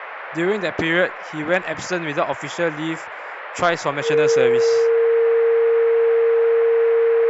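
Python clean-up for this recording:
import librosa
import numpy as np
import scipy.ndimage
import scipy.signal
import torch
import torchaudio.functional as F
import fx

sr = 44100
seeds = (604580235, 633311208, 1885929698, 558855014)

y = fx.notch(x, sr, hz=460.0, q=30.0)
y = fx.noise_reduce(y, sr, print_start_s=3.05, print_end_s=3.55, reduce_db=30.0)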